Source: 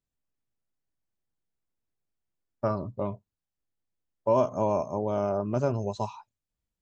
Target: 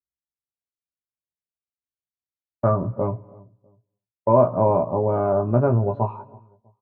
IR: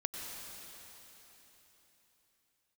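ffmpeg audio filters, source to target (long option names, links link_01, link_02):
-filter_complex "[0:a]lowpass=frequency=1700:width=0.5412,lowpass=frequency=1700:width=1.3066,agate=range=-25dB:threshold=-48dB:ratio=16:detection=peak,highpass=47,lowshelf=frequency=110:gain=6.5,asplit=2[link_01][link_02];[link_02]adelay=17,volume=-5dB[link_03];[link_01][link_03]amix=inputs=2:normalize=0,asplit=2[link_04][link_05];[link_05]adelay=324,lowpass=frequency=830:poles=1,volume=-22.5dB,asplit=2[link_06][link_07];[link_07]adelay=324,lowpass=frequency=830:poles=1,volume=0.34[link_08];[link_04][link_06][link_08]amix=inputs=3:normalize=0,asplit=2[link_09][link_10];[1:a]atrim=start_sample=2205,afade=type=out:start_time=0.35:duration=0.01,atrim=end_sample=15876[link_11];[link_10][link_11]afir=irnorm=-1:irlink=0,volume=-18dB[link_12];[link_09][link_12]amix=inputs=2:normalize=0,volume=5dB"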